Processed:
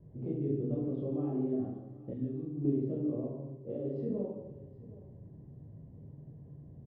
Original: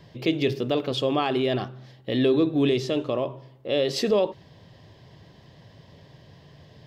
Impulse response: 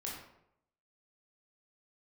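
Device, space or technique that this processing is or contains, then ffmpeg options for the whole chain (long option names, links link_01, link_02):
television next door: -filter_complex "[0:a]acompressor=threshold=-27dB:ratio=6,lowpass=310[link_01];[1:a]atrim=start_sample=2205[link_02];[link_01][link_02]afir=irnorm=-1:irlink=0,asettb=1/sr,asplit=3[link_03][link_04][link_05];[link_03]atrim=end=2.134[link_06];[link_04]atrim=start=2.13:end=2.65,asetpts=PTS-STARTPTS,afade=type=in:duration=0.004:curve=qsin,afade=type=out:start_time=0.516:duration=0.004:curve=qsin,equalizer=frequency=490:width_type=o:width=1.9:gain=-13[link_07];[link_05]atrim=start=2.646[link_08];[link_06][link_07]acrossfade=duration=0.004:curve1=hsin:curve2=qsin[link_09];[link_09][link_08]acrossfade=duration=0.004:curve1=qsin:curve2=hsin,aecho=1:1:144|771:0.266|0.106"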